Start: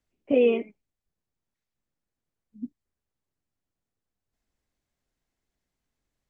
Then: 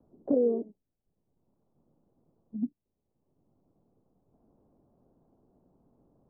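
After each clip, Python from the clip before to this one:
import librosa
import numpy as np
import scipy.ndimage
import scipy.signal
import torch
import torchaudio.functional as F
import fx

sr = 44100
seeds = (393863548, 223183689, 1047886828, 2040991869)

y = scipy.signal.sosfilt(scipy.signal.bessel(8, 570.0, 'lowpass', norm='mag', fs=sr, output='sos'), x)
y = fx.band_squash(y, sr, depth_pct=70)
y = y * 10.0 ** (3.0 / 20.0)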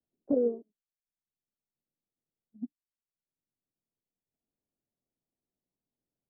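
y = fx.upward_expand(x, sr, threshold_db=-41.0, expansion=2.5)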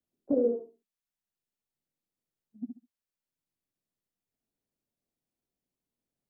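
y = fx.echo_feedback(x, sr, ms=68, feedback_pct=22, wet_db=-6.0)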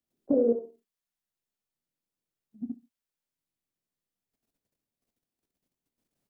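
y = fx.level_steps(x, sr, step_db=10)
y = fx.doubler(y, sr, ms=26.0, db=-13.0)
y = y * 10.0 ** (8.0 / 20.0)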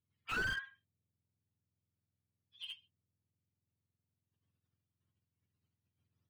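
y = fx.octave_mirror(x, sr, pivot_hz=860.0)
y = fx.slew_limit(y, sr, full_power_hz=43.0)
y = y * 10.0 ** (-3.0 / 20.0)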